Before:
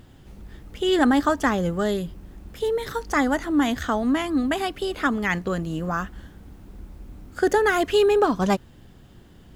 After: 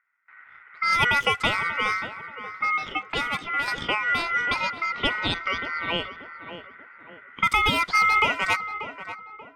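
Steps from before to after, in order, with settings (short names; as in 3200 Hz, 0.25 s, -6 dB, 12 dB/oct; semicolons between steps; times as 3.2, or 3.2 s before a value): low-pass opened by the level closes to 430 Hz, open at -16.5 dBFS; HPF 250 Hz 12 dB/oct; gate with hold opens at -47 dBFS; in parallel at +2 dB: compressor, threshold -35 dBFS, peak gain reduction 18.5 dB; 3.02–3.68 on the sum: tube stage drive 13 dB, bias 0.7; 5.36–5.97 synth low-pass 3600 Hz, resonance Q 2.5; ring modulator 1700 Hz; on a send: tape echo 0.585 s, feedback 45%, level -8.5 dB, low-pass 1400 Hz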